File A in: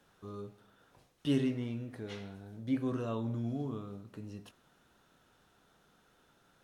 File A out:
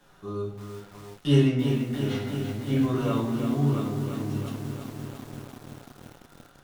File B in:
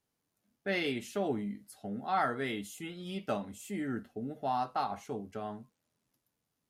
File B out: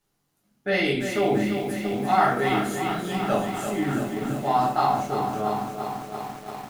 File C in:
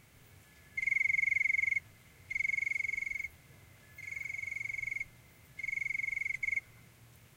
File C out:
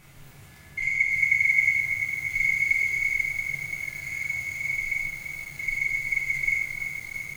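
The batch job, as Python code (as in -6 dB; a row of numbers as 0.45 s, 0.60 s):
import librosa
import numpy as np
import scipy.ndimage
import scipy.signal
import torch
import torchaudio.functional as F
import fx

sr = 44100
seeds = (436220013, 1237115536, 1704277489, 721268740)

y = fx.peak_eq(x, sr, hz=440.0, db=-2.5, octaves=0.52)
y = fx.room_shoebox(y, sr, seeds[0], volume_m3=52.0, walls='mixed', distance_m=1.0)
y = fx.echo_crushed(y, sr, ms=340, feedback_pct=80, bits=8, wet_db=-7.5)
y = y * librosa.db_to_amplitude(4.5)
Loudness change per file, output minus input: +10.0 LU, +11.0 LU, +8.5 LU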